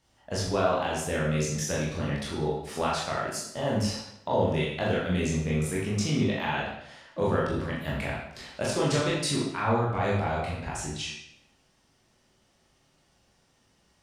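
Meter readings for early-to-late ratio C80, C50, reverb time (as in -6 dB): 4.5 dB, 1.5 dB, 0.75 s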